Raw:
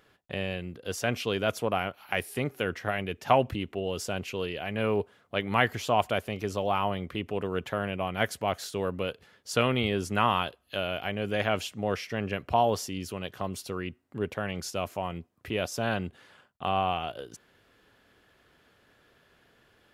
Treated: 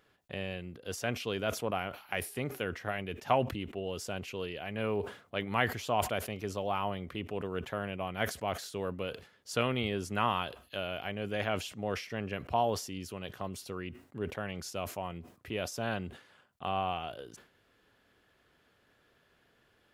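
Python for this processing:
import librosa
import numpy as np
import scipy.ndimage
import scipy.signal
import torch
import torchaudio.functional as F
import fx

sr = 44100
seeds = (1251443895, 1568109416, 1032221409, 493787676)

y = fx.sustainer(x, sr, db_per_s=130.0)
y = y * 10.0 ** (-5.5 / 20.0)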